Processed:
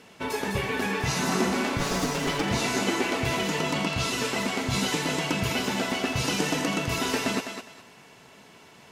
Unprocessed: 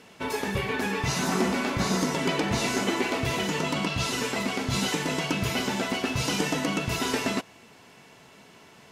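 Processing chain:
0:01.79–0:02.42: lower of the sound and its delayed copy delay 7 ms
feedback echo with a high-pass in the loop 205 ms, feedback 26%, high-pass 420 Hz, level −6.5 dB

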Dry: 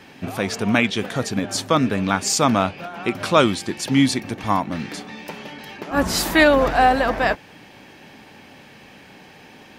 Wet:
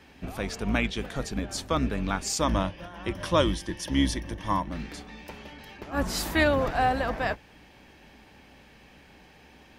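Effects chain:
sub-octave generator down 2 octaves, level −1 dB
0:02.40–0:04.69: EQ curve with evenly spaced ripples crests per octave 1.2, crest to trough 9 dB
level −9 dB

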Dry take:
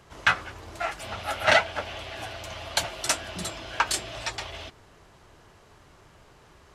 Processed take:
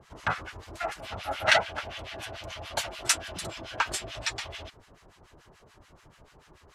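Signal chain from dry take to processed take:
two-band tremolo in antiphase 6.9 Hz, depth 100%, crossover 1,100 Hz
level +2.5 dB

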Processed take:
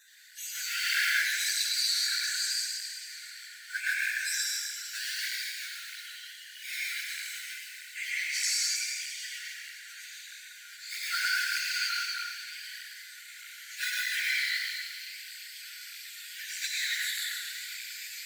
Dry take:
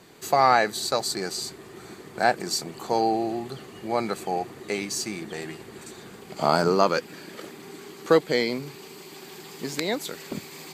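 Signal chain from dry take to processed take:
time-frequency cells dropped at random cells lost 38%
dynamic equaliser 9,300 Hz, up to −4 dB, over −56 dBFS, Q 4.4
harmonic generator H 5 −17 dB, 8 −27 dB, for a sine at −6.5 dBFS
in parallel at −6.5 dB: sample-and-hold swept by an LFO 42×, swing 60% 1.2 Hz
on the sum: time stretch by phase vocoder 1.7×
linear-phase brick-wall high-pass 1,400 Hz
on a send: echo with a time of its own for lows and highs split 2,200 Hz, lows 121 ms, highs 269 ms, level −10.5 dB
on the sum: dense smooth reverb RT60 1.7 s, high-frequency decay 0.9×, pre-delay 80 ms, DRR −4 dB
through-zero flanger with one copy inverted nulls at 1.6 Hz, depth 8 ms

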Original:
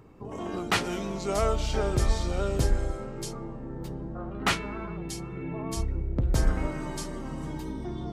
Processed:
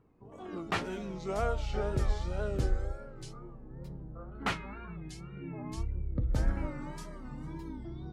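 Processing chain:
noise reduction from a noise print of the clip's start 8 dB
tape wow and flutter 100 cents
high-shelf EQ 3,800 Hz −11 dB
level −5 dB

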